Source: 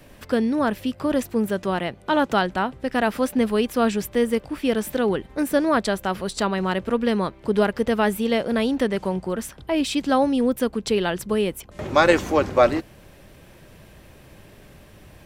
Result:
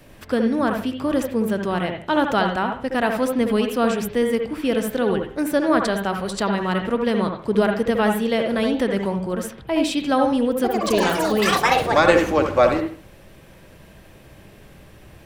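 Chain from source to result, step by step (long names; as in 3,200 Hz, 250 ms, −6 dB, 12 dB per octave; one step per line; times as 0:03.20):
convolution reverb, pre-delay 65 ms, DRR 4 dB
0:10.47–0:12.50: delay with pitch and tempo change per echo 169 ms, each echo +7 semitones, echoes 3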